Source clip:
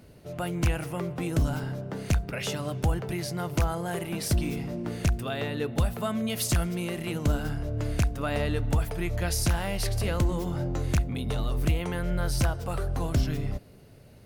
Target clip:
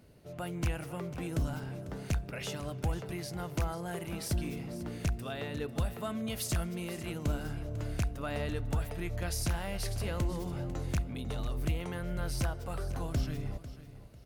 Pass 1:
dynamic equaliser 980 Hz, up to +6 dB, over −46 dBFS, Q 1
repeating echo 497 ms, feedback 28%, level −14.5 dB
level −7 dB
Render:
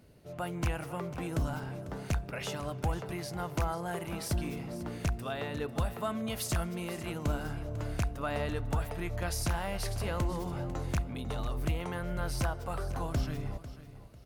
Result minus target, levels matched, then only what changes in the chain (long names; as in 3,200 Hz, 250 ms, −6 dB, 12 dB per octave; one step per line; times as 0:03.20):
1,000 Hz band +4.0 dB
remove: dynamic equaliser 980 Hz, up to +6 dB, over −46 dBFS, Q 1